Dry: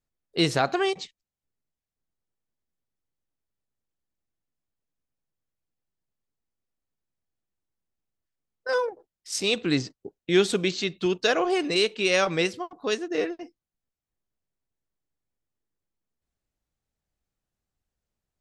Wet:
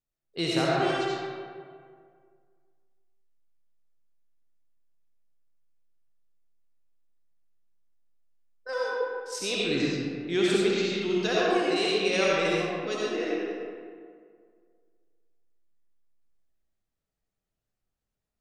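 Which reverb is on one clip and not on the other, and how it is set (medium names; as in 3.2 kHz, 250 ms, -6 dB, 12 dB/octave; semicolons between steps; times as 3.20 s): algorithmic reverb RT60 2 s, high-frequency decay 0.55×, pre-delay 35 ms, DRR -6 dB; trim -8 dB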